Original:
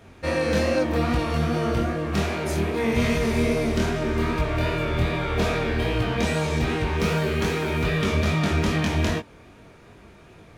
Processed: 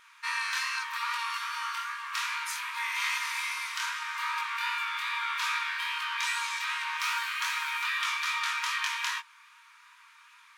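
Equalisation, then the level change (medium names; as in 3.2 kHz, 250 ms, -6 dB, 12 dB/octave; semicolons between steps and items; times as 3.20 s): brick-wall FIR high-pass 910 Hz; 0.0 dB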